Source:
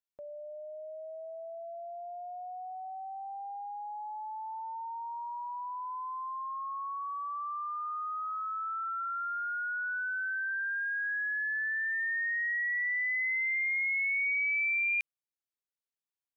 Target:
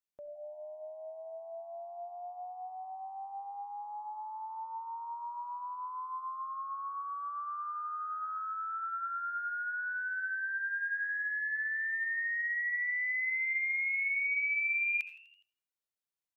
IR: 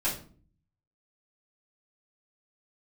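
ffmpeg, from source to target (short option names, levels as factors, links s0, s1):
-filter_complex "[0:a]asplit=6[s0][s1][s2][s3][s4][s5];[s1]adelay=83,afreqshift=94,volume=0.112[s6];[s2]adelay=166,afreqshift=188,volume=0.0676[s7];[s3]adelay=249,afreqshift=282,volume=0.0403[s8];[s4]adelay=332,afreqshift=376,volume=0.0243[s9];[s5]adelay=415,afreqshift=470,volume=0.0146[s10];[s0][s6][s7][s8][s9][s10]amix=inputs=6:normalize=0,asplit=2[s11][s12];[1:a]atrim=start_sample=2205,adelay=62[s13];[s12][s13]afir=irnorm=-1:irlink=0,volume=0.0944[s14];[s11][s14]amix=inputs=2:normalize=0,volume=0.794"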